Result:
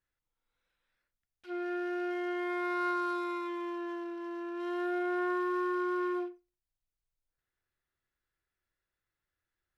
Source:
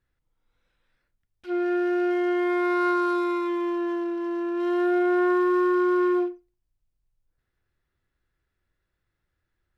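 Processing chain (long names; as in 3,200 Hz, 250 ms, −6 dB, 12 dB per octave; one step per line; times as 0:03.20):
low-shelf EQ 400 Hz −9.5 dB
level −6 dB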